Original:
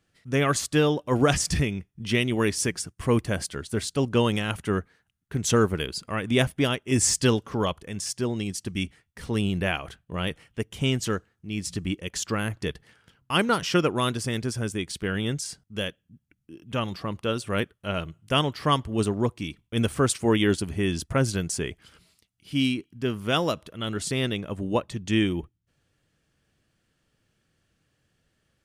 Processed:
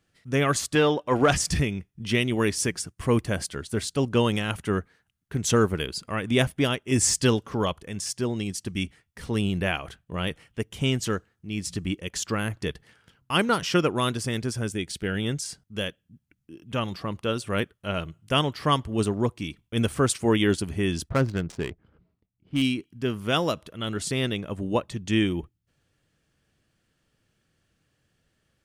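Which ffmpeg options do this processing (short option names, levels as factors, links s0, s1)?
-filter_complex "[0:a]asettb=1/sr,asplit=3[s0][s1][s2];[s0]atrim=end=0.754[s3];[s1]atrim=start=0.75:end=1.32,asetpts=PTS-STARTPTS,afade=t=in:d=0.004:c=qsin,afade=t=out:st=0.566:d=0.004:c=qsin,asplit=2[s4][s5];[s5]highpass=f=720:p=1,volume=3.55,asoftclip=type=tanh:threshold=0.422[s6];[s4][s6]amix=inputs=2:normalize=0,lowpass=f=2500:p=1,volume=0.501[s7];[s2]atrim=start=1.316[s8];[s3][s7]acrossfade=d=0.004:c1=hsin:c2=qsin[s9];[s9][s8]acrossfade=d=0.004:c1=qsin:c2=hsin,asettb=1/sr,asplit=3[s10][s11][s12];[s10]atrim=end=14.704[s13];[s11]atrim=start=14.7:end=15.23,asetpts=PTS-STARTPTS,afade=t=in:d=0.004:c=qsin,afade=t=out:st=0.526:d=0.004:c=qsin,equalizer=f=1100:w=7.4:g=-14.5[s14];[s12]atrim=start=15.226[s15];[s13][s14]acrossfade=d=0.004:c1=hsin:c2=qsin[s16];[s16][s15]acrossfade=d=0.004:c1=qsin:c2=hsin,asettb=1/sr,asplit=3[s17][s18][s19];[s17]atrim=end=21.094[s20];[s18]atrim=start=21.09:end=22.62,asetpts=PTS-STARTPTS,afade=t=in:d=0.004:c=qsin,afade=t=out:st=1.526:d=0.004:c=qsin,adynamicsmooth=sensitivity=4:basefreq=680[s21];[s19]atrim=start=22.616[s22];[s20][s21]acrossfade=d=0.004:c1=hsin:c2=qsin[s23];[s23][s22]acrossfade=d=0.004:c1=qsin:c2=hsin"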